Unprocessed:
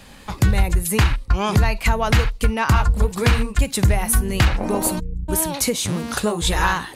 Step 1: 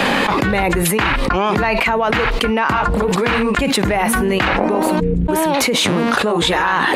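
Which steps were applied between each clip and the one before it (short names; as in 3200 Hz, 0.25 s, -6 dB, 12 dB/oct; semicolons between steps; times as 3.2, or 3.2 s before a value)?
three-band isolator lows -22 dB, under 200 Hz, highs -17 dB, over 3300 Hz; fast leveller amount 100%; gain +1 dB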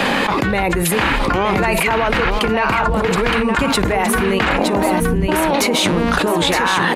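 echo 0.917 s -5.5 dB; gain -1 dB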